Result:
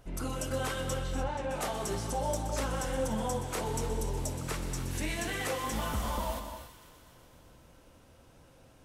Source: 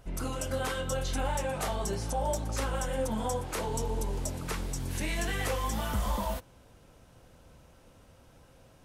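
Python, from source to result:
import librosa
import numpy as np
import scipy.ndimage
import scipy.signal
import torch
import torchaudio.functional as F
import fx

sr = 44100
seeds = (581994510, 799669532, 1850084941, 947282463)

y = fx.peak_eq(x, sr, hz=310.0, db=2.5, octaves=0.39)
y = fx.hum_notches(y, sr, base_hz=50, count=4)
y = fx.echo_wet_highpass(y, sr, ms=125, feedback_pct=79, hz=1500.0, wet_db=-14.0)
y = fx.vibrato(y, sr, rate_hz=13.0, depth_cents=7.9)
y = fx.spacing_loss(y, sr, db_at_10k=20, at=(0.94, 1.51))
y = fx.rev_gated(y, sr, seeds[0], gate_ms=320, shape='rising', drr_db=7.5)
y = F.gain(torch.from_numpy(y), -1.5).numpy()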